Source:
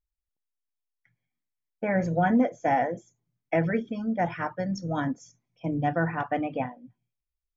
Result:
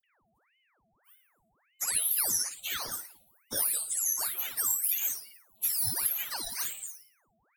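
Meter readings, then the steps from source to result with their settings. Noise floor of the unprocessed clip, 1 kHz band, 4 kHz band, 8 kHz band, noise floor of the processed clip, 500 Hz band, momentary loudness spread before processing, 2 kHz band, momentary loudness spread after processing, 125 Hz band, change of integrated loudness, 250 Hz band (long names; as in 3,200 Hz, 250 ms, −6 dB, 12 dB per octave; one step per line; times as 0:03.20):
below −85 dBFS, −17.5 dB, +13.5 dB, can't be measured, −73 dBFS, −22.5 dB, 10 LU, −9.0 dB, 10 LU, −22.0 dB, −1.0 dB, −27.5 dB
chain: frequency axis turned over on the octave scale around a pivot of 1,400 Hz
high-shelf EQ 3,200 Hz +12 dB
downward compressor 5 to 1, threshold −35 dBFS, peak gain reduction 18.5 dB
steady tone 440 Hz −52 dBFS
bass and treble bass −3 dB, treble +13 dB
phaser with its sweep stopped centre 1,500 Hz, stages 6
all-pass dispersion lows, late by 41 ms, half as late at 1,700 Hz
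on a send: flutter between parallel walls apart 9.7 metres, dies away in 0.48 s
on the sum: ring modulator whose carrier an LFO sweeps 1,400 Hz, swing 85%, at 1.7 Hz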